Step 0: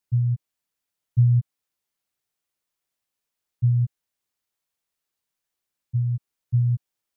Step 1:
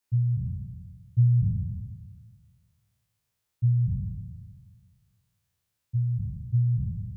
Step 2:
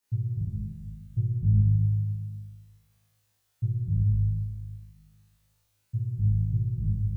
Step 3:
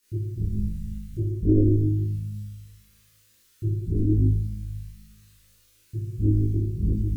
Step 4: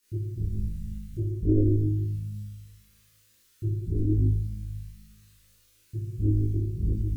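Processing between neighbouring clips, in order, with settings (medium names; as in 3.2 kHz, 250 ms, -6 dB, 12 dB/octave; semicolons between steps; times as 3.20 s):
spectral sustain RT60 1.75 s; peaking EQ 150 Hz -10 dB 0.37 oct
compression 2.5:1, threshold -26 dBFS, peak gain reduction 6.5 dB; on a send: flutter echo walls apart 3.3 m, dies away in 1.2 s
sine folder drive 7 dB, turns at -12 dBFS; chorus voices 4, 0.91 Hz, delay 27 ms, depth 2.2 ms; static phaser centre 310 Hz, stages 4; trim +5.5 dB
dynamic bell 210 Hz, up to -6 dB, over -38 dBFS, Q 2.1; trim -2 dB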